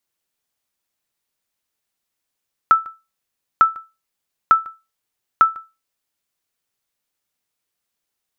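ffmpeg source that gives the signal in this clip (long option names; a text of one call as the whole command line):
ffmpeg -f lavfi -i "aevalsrc='0.668*(sin(2*PI*1320*mod(t,0.9))*exp(-6.91*mod(t,0.9)/0.25)+0.0631*sin(2*PI*1320*max(mod(t,0.9)-0.15,0))*exp(-6.91*max(mod(t,0.9)-0.15,0)/0.25))':duration=3.6:sample_rate=44100" out.wav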